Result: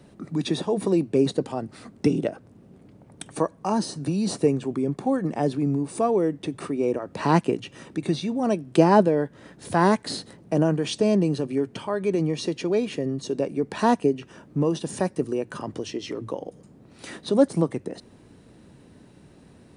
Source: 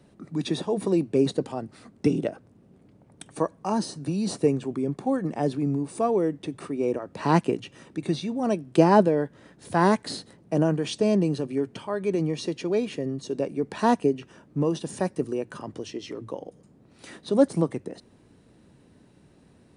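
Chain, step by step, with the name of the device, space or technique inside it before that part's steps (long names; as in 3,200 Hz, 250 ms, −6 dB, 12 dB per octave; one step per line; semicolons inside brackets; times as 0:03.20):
parallel compression (in parallel at −1.5 dB: downward compressor, threshold −34 dBFS, peak gain reduction 21 dB)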